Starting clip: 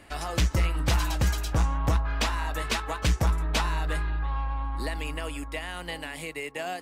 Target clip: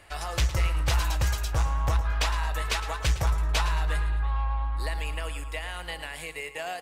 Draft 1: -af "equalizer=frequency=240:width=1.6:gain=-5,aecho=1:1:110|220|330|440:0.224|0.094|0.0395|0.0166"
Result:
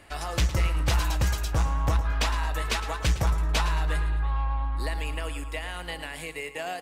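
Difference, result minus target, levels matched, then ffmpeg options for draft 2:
250 Hz band +5.0 dB
-af "equalizer=frequency=240:width=1.6:gain=-15.5,aecho=1:1:110|220|330|440:0.224|0.094|0.0395|0.0166"

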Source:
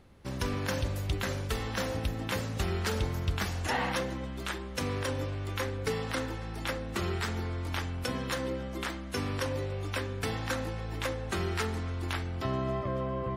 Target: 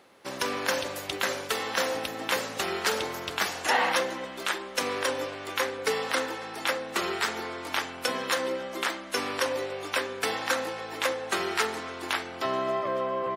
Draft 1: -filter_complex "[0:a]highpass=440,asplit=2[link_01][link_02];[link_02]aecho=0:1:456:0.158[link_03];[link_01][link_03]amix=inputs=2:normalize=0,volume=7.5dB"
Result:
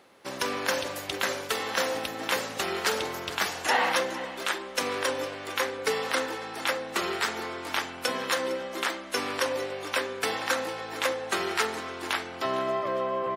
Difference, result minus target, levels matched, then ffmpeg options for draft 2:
echo-to-direct +9.5 dB
-filter_complex "[0:a]highpass=440,asplit=2[link_01][link_02];[link_02]aecho=0:1:456:0.0531[link_03];[link_01][link_03]amix=inputs=2:normalize=0,volume=7.5dB"

